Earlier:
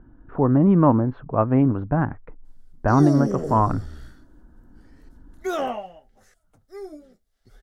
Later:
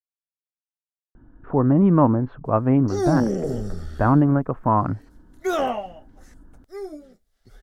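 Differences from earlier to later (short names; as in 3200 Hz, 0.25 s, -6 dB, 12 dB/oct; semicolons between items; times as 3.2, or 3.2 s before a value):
speech: entry +1.15 s; background +3.0 dB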